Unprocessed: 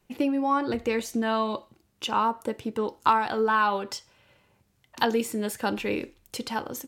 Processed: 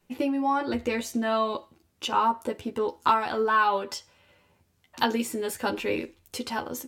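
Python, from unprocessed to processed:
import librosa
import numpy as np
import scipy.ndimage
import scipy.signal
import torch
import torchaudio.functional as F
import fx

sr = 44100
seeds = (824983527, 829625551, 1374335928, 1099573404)

y = fx.doubler(x, sr, ms=12.0, db=-3)
y = F.gain(torch.from_numpy(y), -1.5).numpy()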